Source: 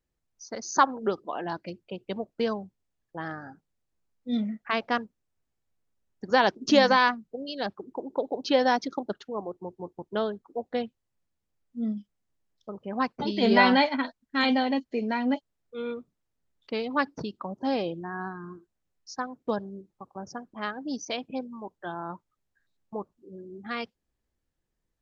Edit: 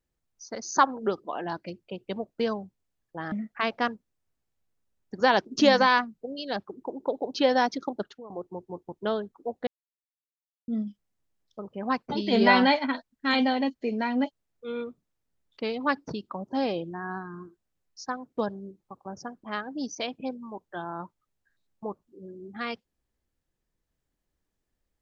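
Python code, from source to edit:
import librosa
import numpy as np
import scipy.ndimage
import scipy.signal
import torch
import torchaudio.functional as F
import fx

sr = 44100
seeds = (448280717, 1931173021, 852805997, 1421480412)

y = fx.edit(x, sr, fx.cut(start_s=3.32, length_s=1.1),
    fx.fade_out_to(start_s=9.15, length_s=0.25, floor_db=-18.5),
    fx.silence(start_s=10.77, length_s=1.01), tone=tone)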